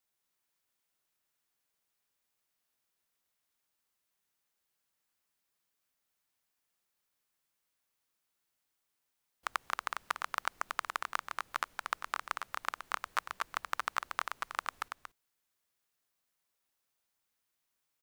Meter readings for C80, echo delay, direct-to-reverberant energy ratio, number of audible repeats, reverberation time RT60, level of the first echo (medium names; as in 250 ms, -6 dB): no reverb, 233 ms, no reverb, 1, no reverb, -5.5 dB